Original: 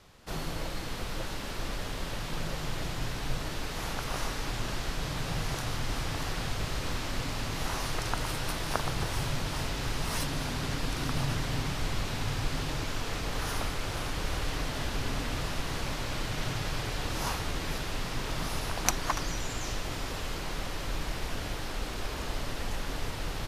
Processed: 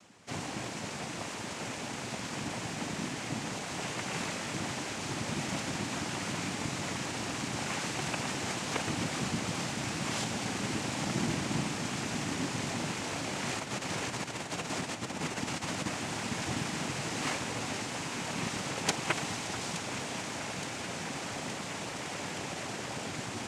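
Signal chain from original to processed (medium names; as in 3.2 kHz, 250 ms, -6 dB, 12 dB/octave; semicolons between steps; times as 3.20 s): 13.59–15.88 s: compressor with a negative ratio -33 dBFS, ratio -0.5; noise-vocoded speech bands 4; echo whose repeats swap between lows and highs 435 ms, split 2 kHz, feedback 83%, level -11 dB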